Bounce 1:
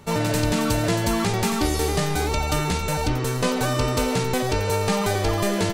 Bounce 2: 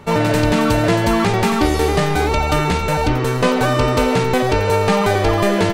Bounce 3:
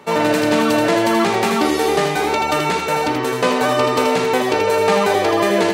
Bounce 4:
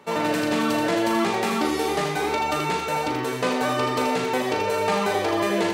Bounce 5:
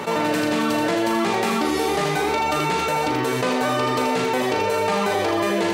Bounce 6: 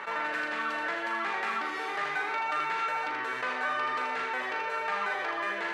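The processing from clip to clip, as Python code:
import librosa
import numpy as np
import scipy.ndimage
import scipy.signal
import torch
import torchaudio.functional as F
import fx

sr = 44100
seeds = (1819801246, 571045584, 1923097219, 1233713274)

y1 = fx.bass_treble(x, sr, bass_db=-3, treble_db=-10)
y1 = y1 * 10.0 ** (8.0 / 20.0)
y2 = scipy.signal.sosfilt(scipy.signal.butter(2, 270.0, 'highpass', fs=sr, output='sos'), y1)
y2 = fx.notch(y2, sr, hz=1400.0, q=29.0)
y2 = y2 + 10.0 ** (-5.5 / 20.0) * np.pad(y2, (int(80 * sr / 1000.0), 0))[:len(y2)]
y3 = fx.doubler(y2, sr, ms=39.0, db=-7.5)
y3 = y3 * 10.0 ** (-7.0 / 20.0)
y4 = fx.env_flatten(y3, sr, amount_pct=70)
y5 = fx.bandpass_q(y4, sr, hz=1600.0, q=2.2)
y5 = y5 * 10.0 ** (-1.0 / 20.0)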